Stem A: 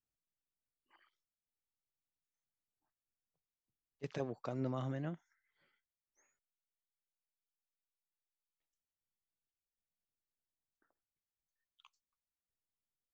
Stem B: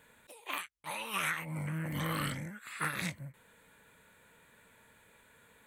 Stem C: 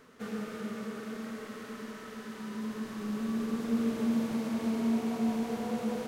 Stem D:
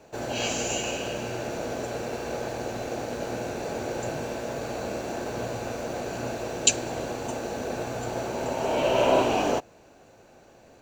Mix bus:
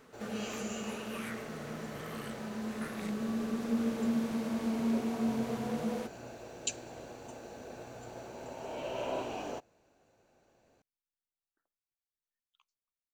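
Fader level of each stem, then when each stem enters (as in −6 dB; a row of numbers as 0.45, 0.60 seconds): −7.0, −11.5, −2.0, −15.0 decibels; 0.75, 0.00, 0.00, 0.00 seconds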